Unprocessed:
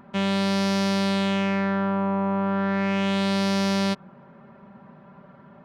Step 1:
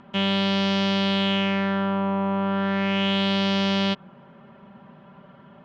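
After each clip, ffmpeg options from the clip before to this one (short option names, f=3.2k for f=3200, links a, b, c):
-filter_complex "[0:a]lowpass=f=7.9k:w=0.5412,lowpass=f=7.9k:w=1.3066,acrossover=split=4900[a][b];[b]acompressor=threshold=-53dB:ratio=4:attack=1:release=60[c];[a][c]amix=inputs=2:normalize=0,equalizer=f=3.1k:w=3.3:g=11"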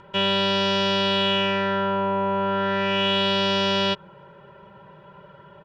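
-af "aecho=1:1:2.1:0.99"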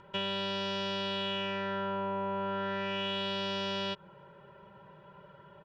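-af "acompressor=threshold=-24dB:ratio=6,volume=-7dB"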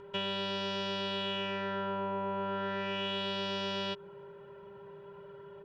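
-af "aeval=exprs='val(0)+0.00447*sin(2*PI*400*n/s)':c=same,volume=-1dB"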